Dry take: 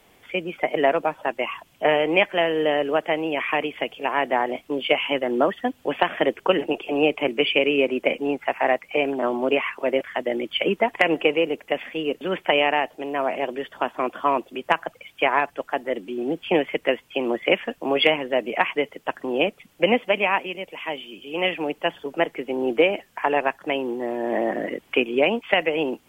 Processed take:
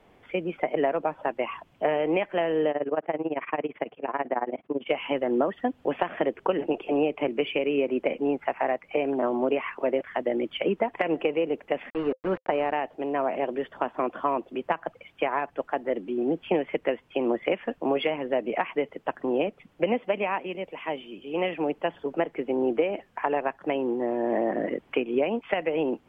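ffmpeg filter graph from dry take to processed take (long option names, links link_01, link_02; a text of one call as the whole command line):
ffmpeg -i in.wav -filter_complex "[0:a]asettb=1/sr,asplit=3[link_01][link_02][link_03];[link_01]atrim=end=2.714[link_04];[link_02]atrim=start=2.71:end=4.89,asetpts=PTS-STARTPTS,afade=type=in:duration=0.004:curve=qsin,afade=type=out:start_time=2.176:duration=0.004:curve=qsin,highpass=110,lowpass=2300,tremolo=f=18:d=0.91[link_05];[link_03]atrim=start=4.886[link_06];[link_04][link_05]acrossfade=duration=0.004:curve1=hsin:curve2=qsin[link_07];[link_07][link_06]acrossfade=duration=0.004:curve1=qsin:curve2=hsin,asettb=1/sr,asplit=3[link_08][link_09][link_10];[link_08]atrim=end=11.904[link_11];[link_09]atrim=start=11.9:end=12.73,asetpts=PTS-STARTPTS,afade=type=in:duration=0.004:curve=qsin,afade=type=out:start_time=0.826:duration=0.004:curve=qsin,aeval=exprs='val(0)*gte(abs(val(0)),0.0422)':channel_layout=same,lowpass=1900,bandreject=frequency=520:width=16[link_12];[link_10]atrim=start=12.726[link_13];[link_11][link_12]acrossfade=duration=0.004:curve1=hsin:curve2=qsin[link_14];[link_14][link_13]acrossfade=duration=0.004:curve1=qsin:curve2=hsin,acompressor=threshold=-21dB:ratio=4,lowpass=frequency=3300:poles=1,highshelf=frequency=2200:gain=-10.5,volume=1dB" out.wav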